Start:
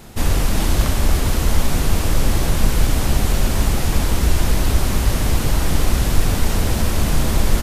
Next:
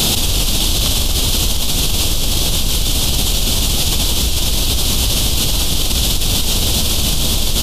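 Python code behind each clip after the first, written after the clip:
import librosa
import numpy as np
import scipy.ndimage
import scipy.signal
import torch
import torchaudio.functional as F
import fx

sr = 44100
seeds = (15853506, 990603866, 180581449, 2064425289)

y = fx.high_shelf_res(x, sr, hz=2500.0, db=9.5, q=3.0)
y = fx.env_flatten(y, sr, amount_pct=100)
y = y * 10.0 ** (-7.5 / 20.0)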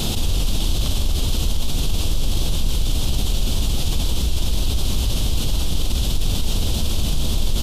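y = fx.tilt_eq(x, sr, slope=-1.5)
y = y * 10.0 ** (-8.5 / 20.0)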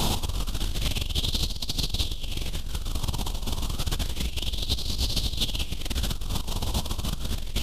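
y = fx.over_compress(x, sr, threshold_db=-20.0, ratio=-0.5)
y = fx.bell_lfo(y, sr, hz=0.3, low_hz=940.0, high_hz=4500.0, db=11)
y = y * 10.0 ** (-6.5 / 20.0)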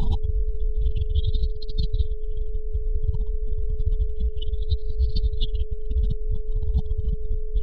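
y = fx.spec_expand(x, sr, power=2.7)
y = y + 10.0 ** (-47.0 / 20.0) * np.sin(2.0 * np.pi * 430.0 * np.arange(len(y)) / sr)
y = y * 10.0 ** (6.5 / 20.0)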